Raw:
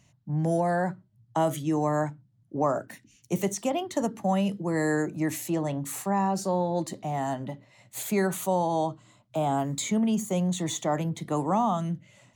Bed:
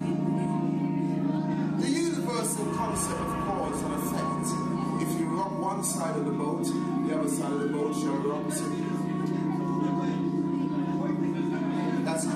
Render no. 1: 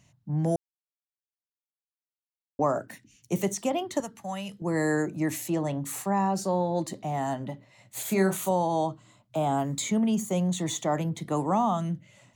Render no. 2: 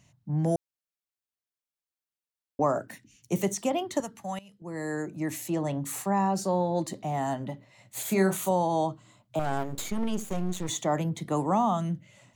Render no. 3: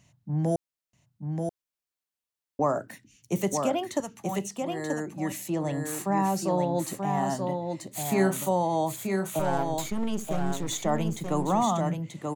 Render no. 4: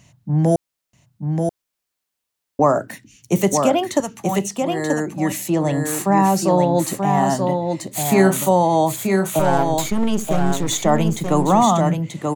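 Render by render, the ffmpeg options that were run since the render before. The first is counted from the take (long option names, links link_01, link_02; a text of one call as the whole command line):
ffmpeg -i in.wav -filter_complex "[0:a]asettb=1/sr,asplit=3[link_01][link_02][link_03];[link_01]atrim=end=4.004[link_04];[link_02]atrim=start=4:end=4.62,asetpts=PTS-STARTPTS,afade=type=in:duration=0.004:curve=qsin,afade=type=out:start_time=0.616:duration=0.004:curve=qsin,equalizer=frequency=310:width=0.43:gain=-14[link_05];[link_03]atrim=start=4.616[link_06];[link_04][link_05]acrossfade=duration=0.004:curve1=hsin:curve2=qsin[link_07];[link_07][link_06]acrossfade=duration=0.004:curve1=qsin:curve2=hsin,asettb=1/sr,asplit=3[link_08][link_09][link_10];[link_08]atrim=end=8.024[link_11];[link_09]atrim=start=8.02:end=8.51,asetpts=PTS-STARTPTS,afade=type=in:duration=0.004:curve=qsin,afade=type=out:start_time=0.486:duration=0.004:curve=qsin,asplit=2[link_12][link_13];[link_13]adelay=31,volume=-6dB[link_14];[link_12][link_14]amix=inputs=2:normalize=0,atrim=end_sample=21609[link_15];[link_10]atrim=start=8.506[link_16];[link_11][link_15]acrossfade=duration=0.004:curve1=hsin:curve2=qsin[link_17];[link_17][link_16]acrossfade=duration=0.004:curve1=qsin:curve2=hsin,asplit=3[link_18][link_19][link_20];[link_18]atrim=end=0.56,asetpts=PTS-STARTPTS,afade=type=out:start_time=0.556:duration=0.004:curve=hsin[link_21];[link_19]atrim=start=0.56:end=2.59,asetpts=PTS-STARTPTS,volume=0[link_22];[link_20]atrim=start=2.59,asetpts=PTS-STARTPTS,afade=type=in:duration=0.004:curve=hsin[link_23];[link_21][link_22][link_23]concat=n=3:v=0:a=1" out.wav
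ffmpeg -i in.wav -filter_complex "[0:a]asettb=1/sr,asplit=3[link_01][link_02][link_03];[link_01]atrim=end=9.394[link_04];[link_02]atrim=start=9.39:end=10.69,asetpts=PTS-STARTPTS,afade=type=in:duration=0.004:curve=qsin,afade=type=out:start_time=1.296:duration=0.004:curve=qsin,aeval=exprs='max(val(0),0)':channel_layout=same[link_05];[link_03]atrim=start=10.686[link_06];[link_04][link_05]acrossfade=duration=0.004:curve1=hsin:curve2=qsin[link_07];[link_07][link_06]acrossfade=duration=0.004:curve1=qsin:curve2=hsin,asplit=2[link_08][link_09];[link_08]atrim=end=4.39,asetpts=PTS-STARTPTS,afade=type=out:start_time=4.386:duration=0.004:curve=hsin:silence=0.125893[link_10];[link_09]atrim=start=4.39,asetpts=PTS-STARTPTS,afade=type=in:duration=1.38:silence=0.125893[link_11];[link_10][link_11]concat=n=2:v=0:a=1" out.wav
ffmpeg -i in.wav -af "aecho=1:1:933:0.596" out.wav
ffmpeg -i in.wav -af "volume=10dB,alimiter=limit=-3dB:level=0:latency=1" out.wav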